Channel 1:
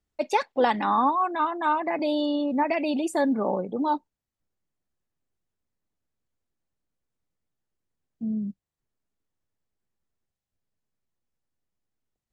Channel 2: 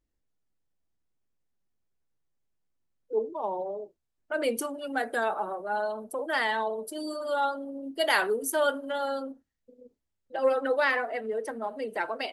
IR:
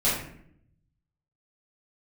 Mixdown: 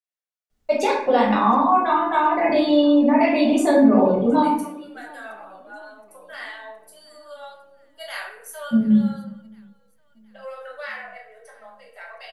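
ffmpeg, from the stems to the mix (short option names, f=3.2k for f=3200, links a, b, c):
-filter_complex "[0:a]acompressor=threshold=-24dB:ratio=4,adelay=500,volume=-0.5dB,asplit=3[a][b][c];[b]volume=-3.5dB[d];[c]volume=-18dB[e];[1:a]highpass=f=680:w=0.5412,highpass=f=680:w=1.3066,equalizer=f=870:w=3.1:g=-6.5,volume=-14dB,asplit=3[f][g][h];[g]volume=-5dB[i];[h]volume=-19dB[j];[2:a]atrim=start_sample=2205[k];[d][i]amix=inputs=2:normalize=0[l];[l][k]afir=irnorm=-1:irlink=0[m];[e][j]amix=inputs=2:normalize=0,aecho=0:1:720|1440|2160|2880|3600|4320|5040|5760:1|0.52|0.27|0.141|0.0731|0.038|0.0198|0.0103[n];[a][f][m][n]amix=inputs=4:normalize=0"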